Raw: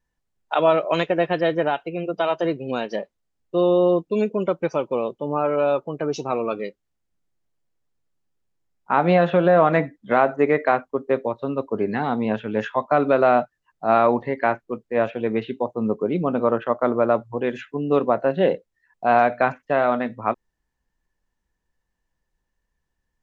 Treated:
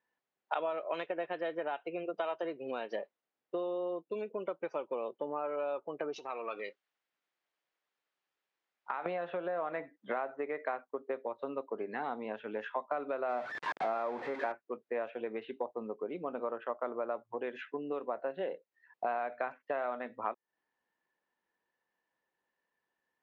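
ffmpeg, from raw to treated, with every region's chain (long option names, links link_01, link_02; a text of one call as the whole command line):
ffmpeg -i in.wav -filter_complex "[0:a]asettb=1/sr,asplit=3[link_01][link_02][link_03];[link_01]atrim=end=6.164[link_04];[link_02]atrim=start=6.16:end=9.06,asetpts=PTS-STARTPTS,afade=type=in:duration=0.004:curve=qsin,afade=type=out:start_time=2.896:duration=0.004:curve=qsin,acompressor=threshold=-32dB:ratio=6:attack=3.2:release=140:knee=1:detection=peak,tiltshelf=frequency=730:gain=-7[link_05];[link_03]atrim=start=9.056[link_06];[link_04][link_05]acrossfade=duration=0.004:curve1=hsin:curve2=qsin[link_07];[link_07][link_06]acrossfade=duration=0.004:curve1=qsin:curve2=hsin,asettb=1/sr,asplit=3[link_08][link_09][link_10];[link_08]atrim=end=13.294[link_11];[link_09]atrim=start=13.29:end=14.52,asetpts=PTS-STARTPTS,afade=type=in:duration=0.004:curve=qsin,afade=type=out:start_time=1.226:duration=0.004:curve=qsin,aeval=exprs='val(0)+0.5*0.0944*sgn(val(0))':channel_layout=same,highshelf=frequency=3600:gain=-10.5,bandreject=frequency=2900:width=8.9[link_12];[link_10]atrim=start=14.516[link_13];[link_11][link_12]acrossfade=duration=0.004:curve1=hsin:curve2=qsin[link_14];[link_14][link_13]acrossfade=duration=0.004:curve1=qsin:curve2=hsin,lowpass=3100,acompressor=threshold=-31dB:ratio=10,highpass=390" out.wav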